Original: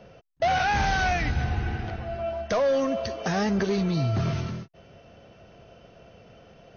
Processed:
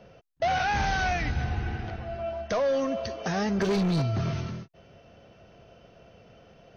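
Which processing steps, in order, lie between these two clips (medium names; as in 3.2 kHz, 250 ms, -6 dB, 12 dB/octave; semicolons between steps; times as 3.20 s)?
3.61–4.02 s: waveshaping leveller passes 2; trim -2.5 dB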